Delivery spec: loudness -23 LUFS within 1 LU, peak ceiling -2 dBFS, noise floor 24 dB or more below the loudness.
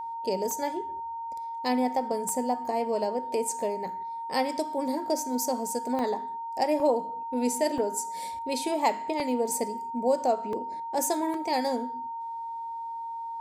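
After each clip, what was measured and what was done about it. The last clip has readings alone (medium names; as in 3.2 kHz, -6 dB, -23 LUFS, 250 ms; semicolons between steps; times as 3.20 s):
dropouts 8; longest dropout 2.0 ms; steady tone 920 Hz; tone level -33 dBFS; loudness -29.5 LUFS; peak level -12.5 dBFS; loudness target -23.0 LUFS
-> interpolate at 0.51/2.29/5.99/6.80/7.78/9.20/10.53/11.34 s, 2 ms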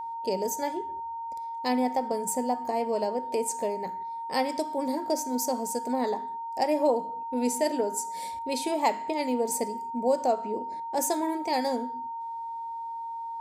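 dropouts 0; steady tone 920 Hz; tone level -33 dBFS
-> band-stop 920 Hz, Q 30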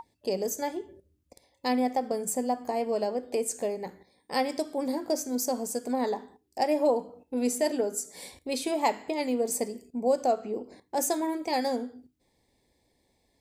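steady tone not found; loudness -30.0 LUFS; peak level -13.0 dBFS; loudness target -23.0 LUFS
-> trim +7 dB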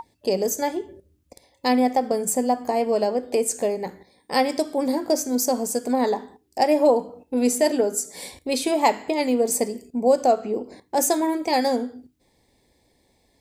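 loudness -23.0 LUFS; peak level -6.0 dBFS; noise floor -65 dBFS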